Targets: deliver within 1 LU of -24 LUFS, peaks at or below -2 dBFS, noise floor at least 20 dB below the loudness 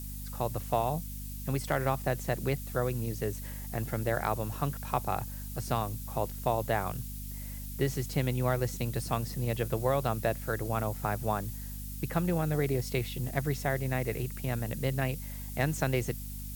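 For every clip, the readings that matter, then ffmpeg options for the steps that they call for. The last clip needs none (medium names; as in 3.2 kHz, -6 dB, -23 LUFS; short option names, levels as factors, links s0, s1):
hum 50 Hz; highest harmonic 250 Hz; hum level -38 dBFS; noise floor -40 dBFS; noise floor target -53 dBFS; loudness -32.5 LUFS; peak level -13.5 dBFS; loudness target -24.0 LUFS
-> -af "bandreject=f=50:t=h:w=4,bandreject=f=100:t=h:w=4,bandreject=f=150:t=h:w=4,bandreject=f=200:t=h:w=4,bandreject=f=250:t=h:w=4"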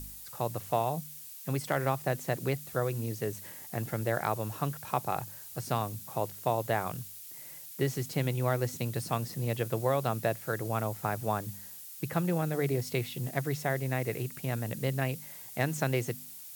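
hum not found; noise floor -46 dBFS; noise floor target -53 dBFS
-> -af "afftdn=nr=7:nf=-46"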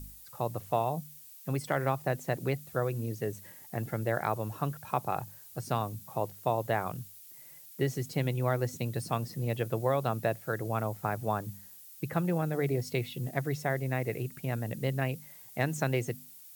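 noise floor -51 dBFS; noise floor target -53 dBFS
-> -af "afftdn=nr=6:nf=-51"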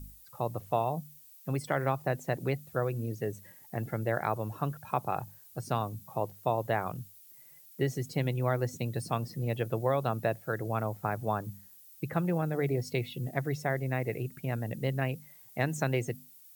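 noise floor -55 dBFS; loudness -33.0 LUFS; peak level -14.0 dBFS; loudness target -24.0 LUFS
-> -af "volume=2.82"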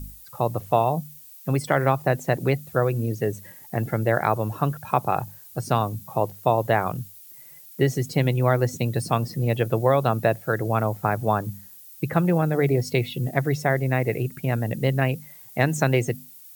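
loudness -24.0 LUFS; peak level -5.0 dBFS; noise floor -46 dBFS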